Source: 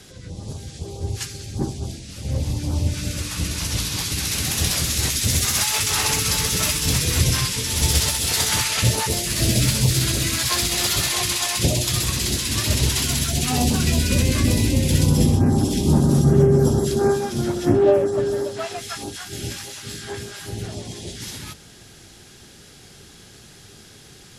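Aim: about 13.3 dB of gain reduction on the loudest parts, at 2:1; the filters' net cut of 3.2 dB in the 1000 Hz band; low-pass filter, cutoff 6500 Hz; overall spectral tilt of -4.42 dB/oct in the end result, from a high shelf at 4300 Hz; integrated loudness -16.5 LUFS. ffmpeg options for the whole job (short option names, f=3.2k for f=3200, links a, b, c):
-af "lowpass=6.5k,equalizer=f=1k:t=o:g=-4,highshelf=f=4.3k:g=-4.5,acompressor=threshold=-37dB:ratio=2,volume=16dB"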